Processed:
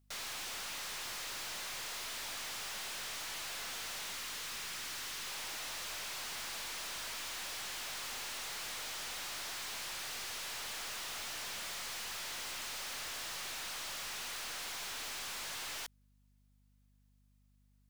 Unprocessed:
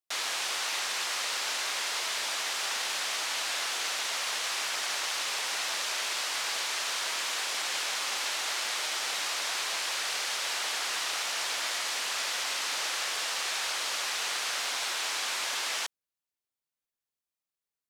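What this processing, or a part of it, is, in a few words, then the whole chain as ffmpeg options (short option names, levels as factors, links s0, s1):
valve amplifier with mains hum: -filter_complex "[0:a]aeval=exprs='(tanh(282*val(0)+0.15)-tanh(0.15))/282':c=same,aeval=exprs='val(0)+0.000178*(sin(2*PI*50*n/s)+sin(2*PI*2*50*n/s)/2+sin(2*PI*3*50*n/s)/3+sin(2*PI*4*50*n/s)/4+sin(2*PI*5*50*n/s)/5)':c=same,asettb=1/sr,asplit=3[s0][s1][s2];[s0]atrim=end=4.114[s3];[s1]atrim=start=4.11:end=5.27,asetpts=PTS-STARTPTS,afade=t=in:d=0.004:c=qsin,afade=t=out:st=1.156:d=0.004:c=qsin,equalizer=f=700:t=o:w=0.8:g=-5.5[s4];[s2]atrim=start=5.266[s5];[s3][s4]acrossfade=d=0.004:c1=hsin:c2=qsin[s6];[s6][s5]acrossfade=d=0.004:c1=qsin:c2=hsin,volume=2.24"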